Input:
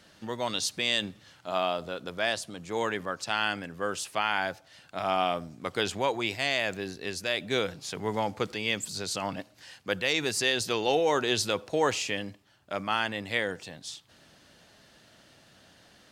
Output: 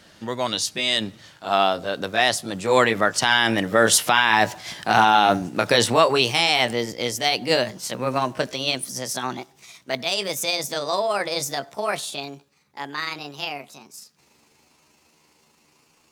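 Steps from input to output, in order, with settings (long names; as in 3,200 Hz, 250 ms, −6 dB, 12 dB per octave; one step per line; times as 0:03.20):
pitch glide at a constant tempo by +8 semitones starting unshifted
source passing by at 0:04.42, 6 m/s, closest 5.1 metres
boost into a limiter +23.5 dB
level −3 dB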